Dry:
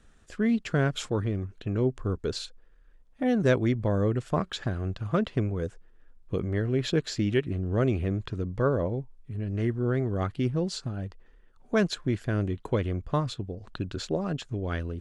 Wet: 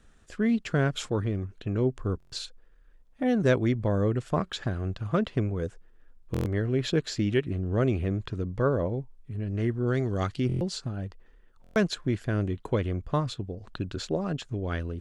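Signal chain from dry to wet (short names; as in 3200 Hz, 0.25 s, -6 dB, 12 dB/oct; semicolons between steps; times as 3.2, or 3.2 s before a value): 9.87–10.4 bell 5700 Hz +13 dB 1.7 oct; stuck buffer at 2.18/6.32/10.47/11.62, samples 1024, times 5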